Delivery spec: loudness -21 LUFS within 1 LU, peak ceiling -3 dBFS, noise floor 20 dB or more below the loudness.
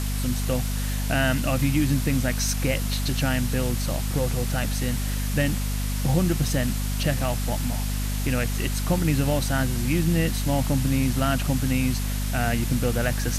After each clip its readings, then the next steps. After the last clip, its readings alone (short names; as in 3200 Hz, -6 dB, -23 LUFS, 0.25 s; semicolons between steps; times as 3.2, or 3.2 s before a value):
hum 50 Hz; harmonics up to 250 Hz; hum level -24 dBFS; noise floor -26 dBFS; noise floor target -45 dBFS; loudness -24.5 LUFS; peak -9.0 dBFS; loudness target -21.0 LUFS
-> de-hum 50 Hz, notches 5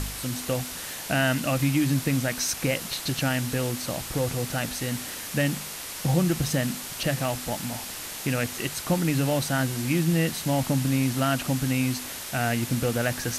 hum none; noise floor -37 dBFS; noise floor target -47 dBFS
-> denoiser 10 dB, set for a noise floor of -37 dBFS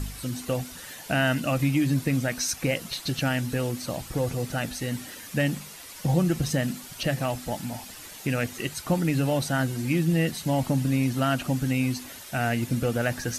noise floor -43 dBFS; noise floor target -47 dBFS
-> denoiser 6 dB, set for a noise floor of -43 dBFS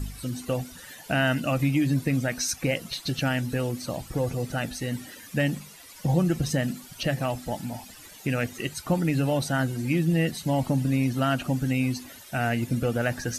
noise floor -47 dBFS; loudness -27.0 LUFS; peak -10.5 dBFS; loudness target -21.0 LUFS
-> gain +6 dB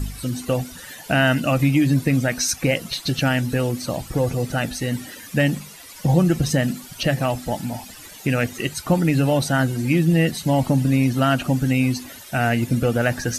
loudness -21.0 LUFS; peak -4.5 dBFS; noise floor -41 dBFS